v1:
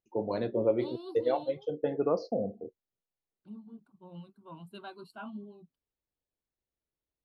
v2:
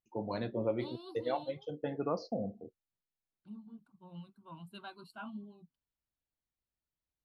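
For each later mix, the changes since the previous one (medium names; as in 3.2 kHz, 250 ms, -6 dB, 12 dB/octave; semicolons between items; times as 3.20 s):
master: add peaking EQ 440 Hz -8.5 dB 1.2 oct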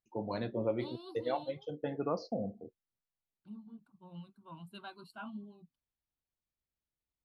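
no change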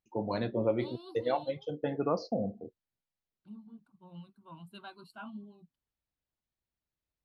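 first voice +4.0 dB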